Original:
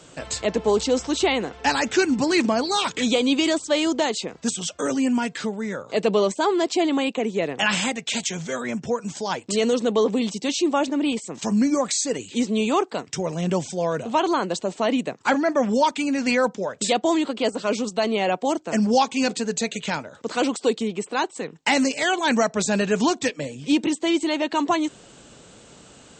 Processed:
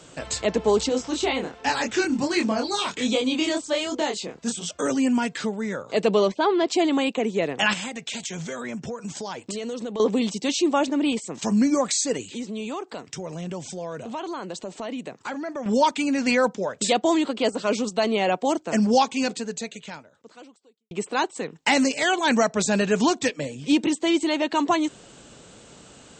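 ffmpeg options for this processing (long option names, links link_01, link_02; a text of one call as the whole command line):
ffmpeg -i in.wav -filter_complex "[0:a]asettb=1/sr,asplit=3[link_01][link_02][link_03];[link_01]atrim=end=0.894[link_04];[link_02]atrim=start=0.89:end=4.71,asetpts=PTS-STARTPTS,afade=type=in:duration=0.004:curve=qsin,afade=type=out:start_time=3.816:duration=0.004:curve=qsin,flanger=delay=22.5:depth=5:speed=1.3[link_05];[link_03]atrim=start=4.706[link_06];[link_04][link_05]acrossfade=duration=0.004:curve1=hsin:curve2=qsin[link_07];[link_07][link_06]acrossfade=duration=0.004:curve1=qsin:curve2=hsin,asettb=1/sr,asplit=3[link_08][link_09][link_10];[link_08]atrim=end=6.284[link_11];[link_09]atrim=start=6.28:end=6.68,asetpts=PTS-STARTPTS,afade=type=in:duration=0.004:curve=qsin,afade=type=out:start_time=0.396:duration=0.004:curve=qsin,lowpass=frequency=4400:width=0.5412,lowpass=frequency=4400:width=1.3066[link_12];[link_10]atrim=start=6.676[link_13];[link_11][link_12]acrossfade=duration=0.004:curve1=hsin:curve2=qsin[link_14];[link_14][link_13]acrossfade=duration=0.004:curve1=qsin:curve2=hsin,asettb=1/sr,asplit=3[link_15][link_16][link_17];[link_15]atrim=end=7.734[link_18];[link_16]atrim=start=7.73:end=10,asetpts=PTS-STARTPTS,afade=type=in:duration=0.004:curve=qsin,afade=type=out:start_time=2.266:duration=0.004:curve=qsin,acompressor=threshold=-28dB:ratio=6:attack=3.2:release=140:knee=1:detection=peak[link_19];[link_17]atrim=start=9.996[link_20];[link_18][link_19]acrossfade=duration=0.004:curve1=hsin:curve2=qsin[link_21];[link_21][link_20]acrossfade=duration=0.004:curve1=qsin:curve2=hsin,asettb=1/sr,asplit=3[link_22][link_23][link_24];[link_22]atrim=end=12.304[link_25];[link_23]atrim=start=12.3:end=15.66,asetpts=PTS-STARTPTS,afade=type=in:duration=0.004:curve=qsin,afade=type=out:start_time=3.356:duration=0.004:curve=qsin,acompressor=threshold=-33dB:ratio=2.5:attack=3.2:release=140:knee=1:detection=peak[link_26];[link_24]atrim=start=15.656[link_27];[link_25][link_26]acrossfade=duration=0.004:curve1=hsin:curve2=qsin[link_28];[link_28][link_27]acrossfade=duration=0.004:curve1=qsin:curve2=hsin,asplit=2[link_29][link_30];[link_29]atrim=end=20.91,asetpts=PTS-STARTPTS,afade=type=out:start_time=18.97:duration=1.94:curve=qua[link_31];[link_30]atrim=start=20.91,asetpts=PTS-STARTPTS,afade=type=in:duration=0.004:curve=hsin[link_32];[link_31][link_32]concat=n=2:v=0:a=1" out.wav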